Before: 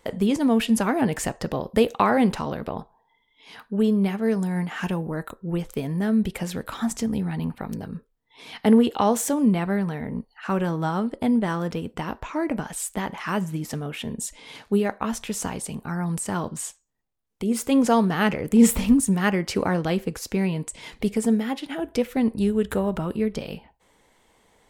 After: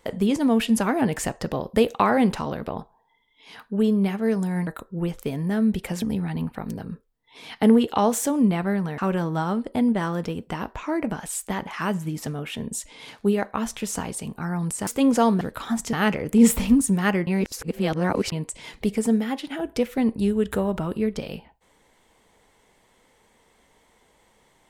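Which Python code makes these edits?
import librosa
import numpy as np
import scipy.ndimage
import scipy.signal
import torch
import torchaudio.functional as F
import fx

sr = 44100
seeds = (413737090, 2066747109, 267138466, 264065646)

y = fx.edit(x, sr, fx.cut(start_s=4.67, length_s=0.51),
    fx.move(start_s=6.53, length_s=0.52, to_s=18.12),
    fx.cut(start_s=10.01, length_s=0.44),
    fx.cut(start_s=16.34, length_s=1.24),
    fx.reverse_span(start_s=19.46, length_s=1.05), tone=tone)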